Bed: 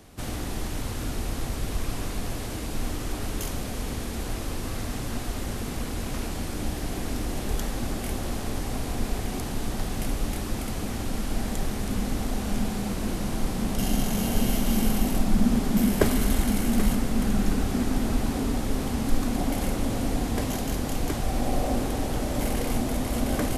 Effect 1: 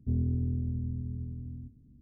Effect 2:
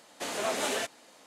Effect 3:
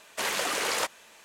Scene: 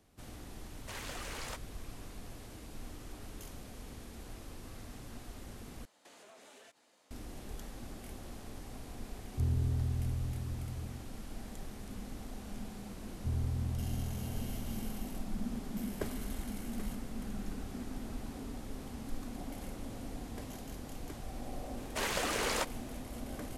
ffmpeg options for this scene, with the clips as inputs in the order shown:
ffmpeg -i bed.wav -i cue0.wav -i cue1.wav -i cue2.wav -filter_complex "[3:a]asplit=2[link_01][link_02];[1:a]asplit=2[link_03][link_04];[0:a]volume=-16.5dB[link_05];[2:a]acompressor=threshold=-42dB:ratio=6:attack=3.2:release=140:knee=1:detection=peak[link_06];[link_03]equalizer=frequency=230:width=3.1:gain=-12.5[link_07];[link_04]equalizer=frequency=250:width=1.5:gain=-13[link_08];[link_02]lowshelf=frequency=420:gain=9[link_09];[link_05]asplit=2[link_10][link_11];[link_10]atrim=end=5.854[link_12];[link_06]atrim=end=1.26,asetpts=PTS-STARTPTS,volume=-12.5dB[link_13];[link_11]atrim=start=7.106[link_14];[link_01]atrim=end=1.24,asetpts=PTS-STARTPTS,volume=-15.5dB,afade=type=in:duration=0.004:curve=hsin,afade=type=out:start_time=1.236:duration=0.004:curve=hsin,adelay=700[link_15];[link_07]atrim=end=2.01,asetpts=PTS-STARTPTS,volume=-1dB,afade=type=in:duration=0.004:curve=hsin,afade=type=out:start_time=2.006:duration=0.004:curve=hsin,adelay=9310[link_16];[link_08]atrim=end=2.01,asetpts=PTS-STARTPTS,volume=-3dB,afade=type=in:duration=0.004:curve=hsin,afade=type=out:start_time=2.006:duration=0.004:curve=hsin,adelay=13180[link_17];[link_09]atrim=end=1.24,asetpts=PTS-STARTPTS,volume=-6.5dB,afade=type=in:duration=0.004:curve=hsin,afade=type=out:start_time=1.236:duration=0.004:curve=hsin,adelay=21780[link_18];[link_12][link_13]acrossfade=duration=0.004:curve1=hsin:curve2=hsin[link_19];[link_19][link_14]acrossfade=duration=0.004:curve1=hsin:curve2=hsin[link_20];[link_20][link_15][link_16][link_17][link_18]amix=inputs=5:normalize=0" out.wav

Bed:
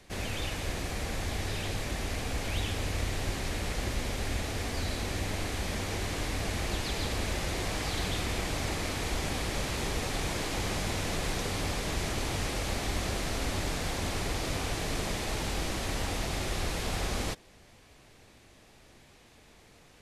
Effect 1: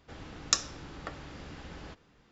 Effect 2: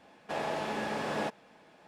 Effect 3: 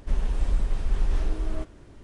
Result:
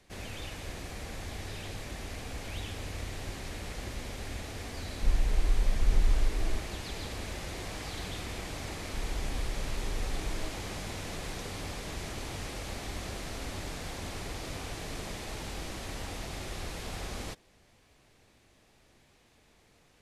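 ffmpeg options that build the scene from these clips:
ffmpeg -i bed.wav -i cue0.wav -i cue1.wav -i cue2.wav -filter_complex "[3:a]asplit=2[link_01][link_02];[0:a]volume=-6.5dB[link_03];[link_01]aphaser=in_gain=1:out_gain=1:delay=3:decay=0.5:speed=1:type=triangular[link_04];[link_02]acompressor=threshold=-21dB:ratio=6:attack=3.2:release=140:knee=1:detection=peak[link_05];[link_04]atrim=end=2.03,asetpts=PTS-STARTPTS,volume=-6.5dB,afade=type=in:duration=0.004:curve=hsin,afade=type=out:start_time=2.026:duration=0.004:curve=hsin,adelay=4960[link_06];[link_05]atrim=end=2.03,asetpts=PTS-STARTPTS,volume=-8dB,afade=type=in:duration=0.004:curve=hsin,afade=type=out:start_time=2.026:duration=0.004:curve=hsin,adelay=8870[link_07];[link_03][link_06][link_07]amix=inputs=3:normalize=0" out.wav

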